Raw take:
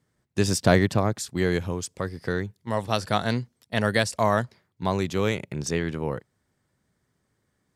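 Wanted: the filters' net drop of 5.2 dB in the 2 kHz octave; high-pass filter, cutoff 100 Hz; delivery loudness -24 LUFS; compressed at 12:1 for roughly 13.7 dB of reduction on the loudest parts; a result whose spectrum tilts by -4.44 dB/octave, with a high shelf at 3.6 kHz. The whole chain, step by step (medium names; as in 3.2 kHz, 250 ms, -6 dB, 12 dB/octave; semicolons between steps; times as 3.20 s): high-pass 100 Hz; peaking EQ 2 kHz -8 dB; treble shelf 3.6 kHz +5.5 dB; compression 12:1, threshold -27 dBFS; trim +9.5 dB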